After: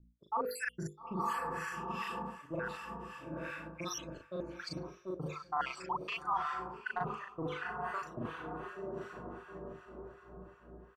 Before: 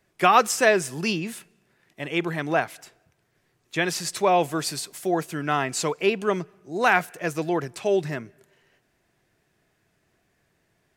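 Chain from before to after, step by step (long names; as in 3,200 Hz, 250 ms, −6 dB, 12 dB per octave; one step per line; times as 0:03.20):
time-frequency cells dropped at random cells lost 82%
low-shelf EQ 200 Hz +10 dB
mains hum 60 Hz, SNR 29 dB
low-pass that shuts in the quiet parts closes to 360 Hz, open at −23.5 dBFS
on a send: feedback delay with all-pass diffusion 888 ms, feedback 41%, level −12 dB
on the sum: soft clipping −14 dBFS, distortion −16 dB
two-band tremolo in antiphase 2.7 Hz, depth 100%, crossover 1,100 Hz
mains-hum notches 50/100/150/200/250/300/350/400/450/500 Hz
double-tracking delay 38 ms −2 dB
reversed playback
downward compressor 5 to 1, threshold −43 dBFS, peak gain reduction 20 dB
reversed playback
parametric band 1,100 Hz +11 dB 0.76 octaves
one half of a high-frequency compander decoder only
level +4 dB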